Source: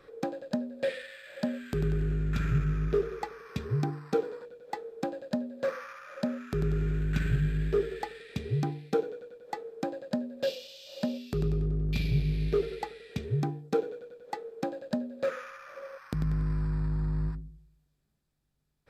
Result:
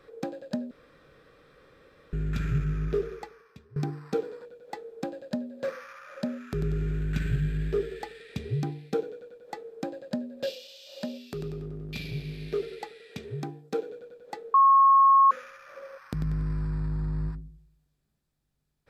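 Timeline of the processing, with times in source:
0.71–2.13 room tone
3.11–3.76 fade out quadratic, to -22.5 dB
10.46–13.9 HPF 290 Hz 6 dB/oct
14.54–15.31 bleep 1090 Hz -10.5 dBFS
whole clip: dynamic EQ 1000 Hz, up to -4 dB, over -44 dBFS, Q 1

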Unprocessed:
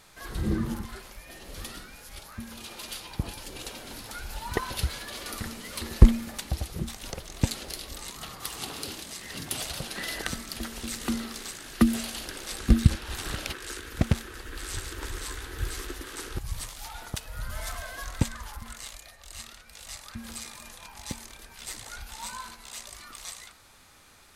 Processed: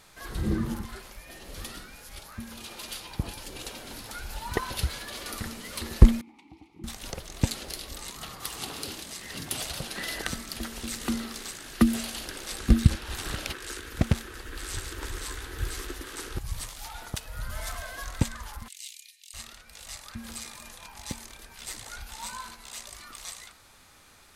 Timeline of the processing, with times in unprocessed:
6.21–6.84 vowel filter u
18.68–19.34 steep high-pass 2300 Hz 48 dB/oct

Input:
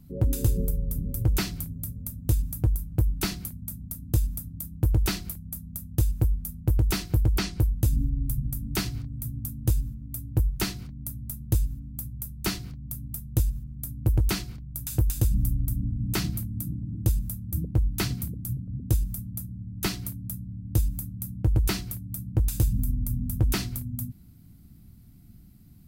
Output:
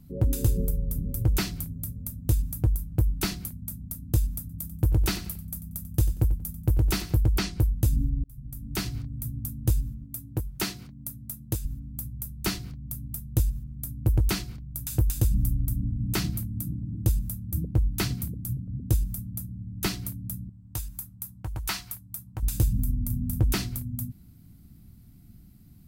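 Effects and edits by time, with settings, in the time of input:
4.4–7.16 feedback echo 92 ms, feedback 27%, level -14.5 dB
8.24–8.95 fade in linear
10.04–11.65 HPF 180 Hz 6 dB/oct
20.49–22.43 resonant low shelf 620 Hz -11.5 dB, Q 1.5
22.97–23.41 doubler 37 ms -9 dB

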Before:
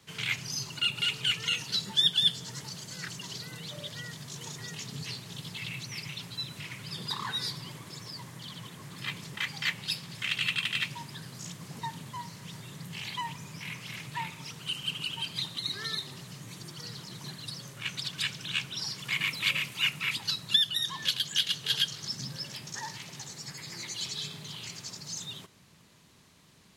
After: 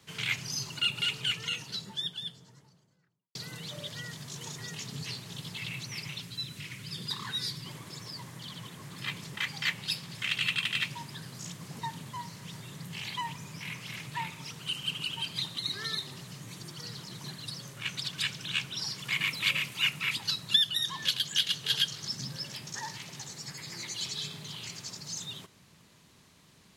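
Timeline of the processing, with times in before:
0.78–3.35 studio fade out
6.2–7.66 bell 810 Hz -8.5 dB 1.5 oct

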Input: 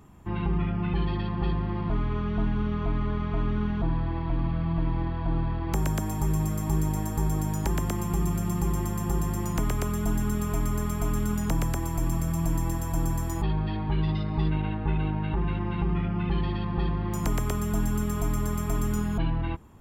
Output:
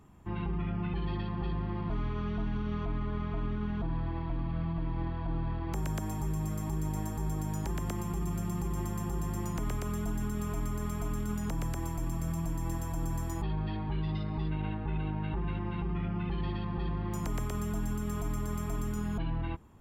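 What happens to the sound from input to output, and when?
1.9–2.85 high shelf 5500 Hz +9.5 dB
whole clip: high shelf 10000 Hz -3.5 dB; limiter -19.5 dBFS; gain -5 dB

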